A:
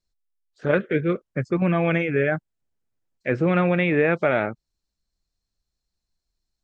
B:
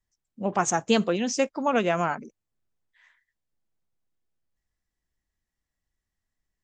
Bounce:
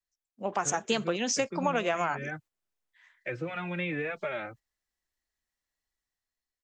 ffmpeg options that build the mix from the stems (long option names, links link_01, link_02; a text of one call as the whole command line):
ffmpeg -i stem1.wav -i stem2.wav -filter_complex "[0:a]acrossover=split=190|3000[link_01][link_02][link_03];[link_02]acompressor=threshold=-28dB:ratio=3[link_04];[link_01][link_04][link_03]amix=inputs=3:normalize=0,asplit=2[link_05][link_06];[link_06]adelay=3.4,afreqshift=-1.8[link_07];[link_05][link_07]amix=inputs=2:normalize=1,volume=-1dB[link_08];[1:a]equalizer=frequency=140:width_type=o:width=0.92:gain=-6,dynaudnorm=framelen=290:gausssize=5:maxgain=8.5dB,volume=-0.5dB[link_09];[link_08][link_09]amix=inputs=2:normalize=0,agate=range=-8dB:threshold=-46dB:ratio=16:detection=peak,lowshelf=frequency=350:gain=-10.5,acrossover=split=150[link_10][link_11];[link_11]acompressor=threshold=-26dB:ratio=4[link_12];[link_10][link_12]amix=inputs=2:normalize=0" out.wav